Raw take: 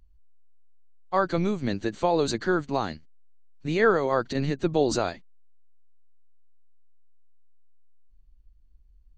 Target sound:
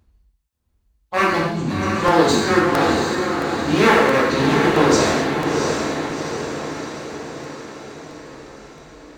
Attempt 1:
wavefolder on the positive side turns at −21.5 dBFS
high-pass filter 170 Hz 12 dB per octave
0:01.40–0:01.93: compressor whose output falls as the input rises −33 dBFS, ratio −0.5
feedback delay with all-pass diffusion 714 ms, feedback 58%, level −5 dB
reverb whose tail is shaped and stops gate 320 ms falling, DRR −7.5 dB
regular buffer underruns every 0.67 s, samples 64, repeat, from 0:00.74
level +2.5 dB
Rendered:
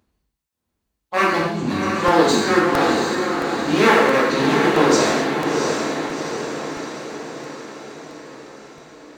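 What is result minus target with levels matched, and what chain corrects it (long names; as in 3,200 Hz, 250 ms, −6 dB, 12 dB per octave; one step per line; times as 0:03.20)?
125 Hz band −4.0 dB
wavefolder on the positive side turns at −21.5 dBFS
high-pass filter 57 Hz 12 dB per octave
0:01.40–0:01.93: compressor whose output falls as the input rises −33 dBFS, ratio −0.5
feedback delay with all-pass diffusion 714 ms, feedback 58%, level −5 dB
reverb whose tail is shaped and stops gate 320 ms falling, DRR −7.5 dB
regular buffer underruns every 0.67 s, samples 64, repeat, from 0:00.74
level +2.5 dB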